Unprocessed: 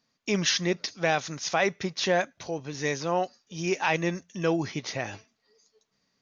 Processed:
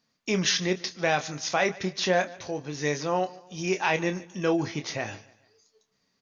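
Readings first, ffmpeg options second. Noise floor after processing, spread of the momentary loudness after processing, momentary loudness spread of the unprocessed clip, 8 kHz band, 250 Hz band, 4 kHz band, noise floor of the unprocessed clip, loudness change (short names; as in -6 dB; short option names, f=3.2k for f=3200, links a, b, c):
-74 dBFS, 9 LU, 9 LU, n/a, +0.5 dB, +0.5 dB, -76 dBFS, +0.5 dB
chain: -filter_complex "[0:a]asplit=2[a][b];[b]adelay=27,volume=-9dB[c];[a][c]amix=inputs=2:normalize=0,aecho=1:1:146|292|438:0.0944|0.0387|0.0159"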